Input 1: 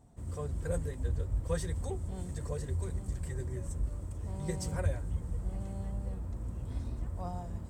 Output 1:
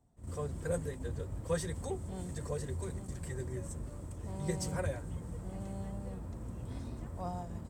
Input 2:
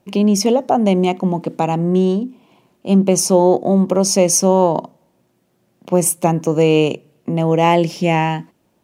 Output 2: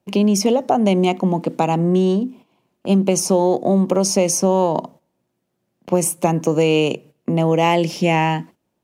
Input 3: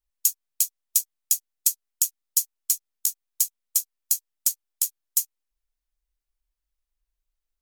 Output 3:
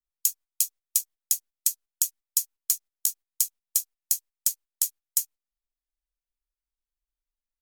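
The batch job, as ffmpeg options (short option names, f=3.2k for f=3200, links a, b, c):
-filter_complex "[0:a]agate=range=-12dB:threshold=-40dB:ratio=16:detection=peak,acrossover=split=110|2000[a][b][c];[a]acompressor=threshold=-48dB:ratio=4[d];[b]acompressor=threshold=-14dB:ratio=4[e];[c]acompressor=threshold=-21dB:ratio=4[f];[d][e][f]amix=inputs=3:normalize=0,volume=1.5dB"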